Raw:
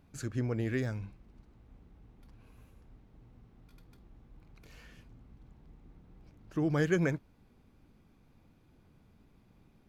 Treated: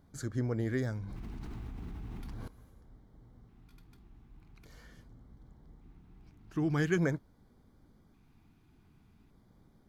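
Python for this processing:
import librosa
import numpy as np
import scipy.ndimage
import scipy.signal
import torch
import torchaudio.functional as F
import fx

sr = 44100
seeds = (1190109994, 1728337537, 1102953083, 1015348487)

y = fx.filter_lfo_notch(x, sr, shape='square', hz=0.43, low_hz=540.0, high_hz=2600.0, q=2.1)
y = fx.env_flatten(y, sr, amount_pct=100, at=(1.03, 2.48))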